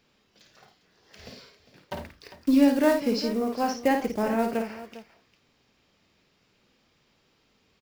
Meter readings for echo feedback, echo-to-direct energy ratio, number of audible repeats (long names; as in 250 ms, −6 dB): repeats not evenly spaced, −5.0 dB, 3